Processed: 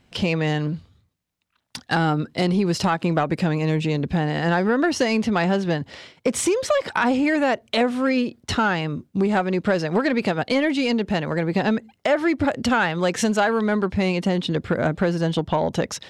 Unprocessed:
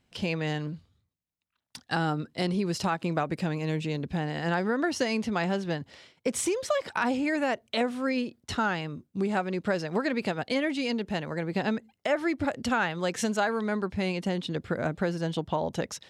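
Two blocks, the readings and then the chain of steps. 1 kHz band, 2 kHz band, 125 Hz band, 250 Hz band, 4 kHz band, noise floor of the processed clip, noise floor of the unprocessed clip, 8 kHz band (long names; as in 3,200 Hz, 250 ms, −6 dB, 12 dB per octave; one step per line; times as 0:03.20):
+7.0 dB, +7.0 dB, +8.5 dB, +8.0 dB, +7.0 dB, −69 dBFS, −80 dBFS, +6.0 dB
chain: high-shelf EQ 6,500 Hz −6 dB
in parallel at −2 dB: downward compressor, threshold −35 dBFS, peak gain reduction 13 dB
on the sum: soft clipping −16 dBFS, distortion −22 dB
level +6.5 dB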